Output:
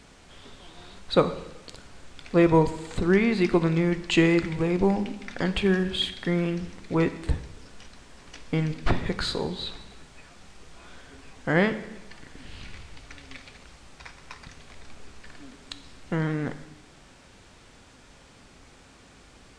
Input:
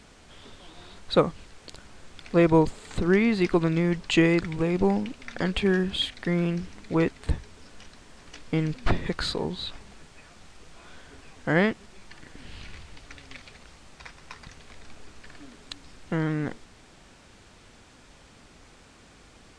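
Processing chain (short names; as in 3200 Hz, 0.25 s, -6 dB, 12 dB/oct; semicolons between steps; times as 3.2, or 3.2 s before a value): plate-style reverb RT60 1 s, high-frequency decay 0.95×, DRR 9.5 dB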